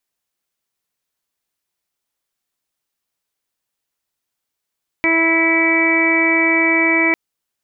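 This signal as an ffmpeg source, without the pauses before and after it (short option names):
-f lavfi -i "aevalsrc='0.126*sin(2*PI*328*t)+0.0631*sin(2*PI*656*t)+0.0562*sin(2*PI*984*t)+0.0299*sin(2*PI*1312*t)+0.02*sin(2*PI*1640*t)+0.112*sin(2*PI*1968*t)+0.178*sin(2*PI*2296*t)':d=2.1:s=44100"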